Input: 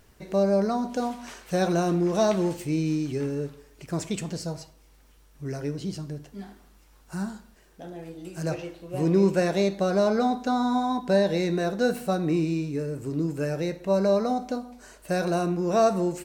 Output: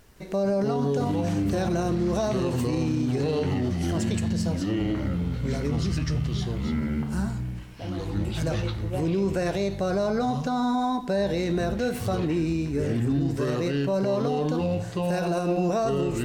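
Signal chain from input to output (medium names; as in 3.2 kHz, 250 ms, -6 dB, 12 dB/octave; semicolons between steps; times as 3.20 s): ever faster or slower copies 161 ms, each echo -6 st, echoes 3; peak limiter -19.5 dBFS, peak gain reduction 9.5 dB; trim +2 dB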